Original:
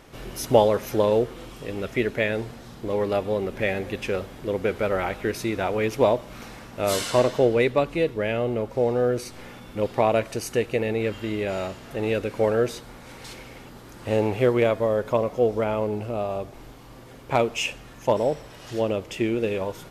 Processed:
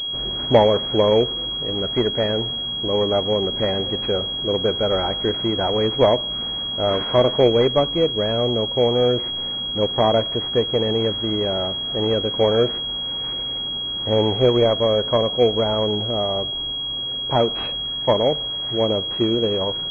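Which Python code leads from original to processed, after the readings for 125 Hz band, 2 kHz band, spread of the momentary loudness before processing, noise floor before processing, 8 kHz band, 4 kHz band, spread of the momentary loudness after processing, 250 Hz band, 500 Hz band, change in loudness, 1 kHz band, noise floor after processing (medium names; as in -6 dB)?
+4.5 dB, -4.0 dB, 16 LU, -45 dBFS, under -15 dB, +19.0 dB, 7 LU, +3.5 dB, +4.0 dB, +5.0 dB, +3.0 dB, -27 dBFS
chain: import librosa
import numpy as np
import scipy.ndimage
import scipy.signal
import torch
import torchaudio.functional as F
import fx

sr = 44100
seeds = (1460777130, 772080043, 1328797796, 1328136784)

y = fx.cvsd(x, sr, bps=32000)
y = fx.pwm(y, sr, carrier_hz=3300.0)
y = y * 10.0 ** (4.5 / 20.0)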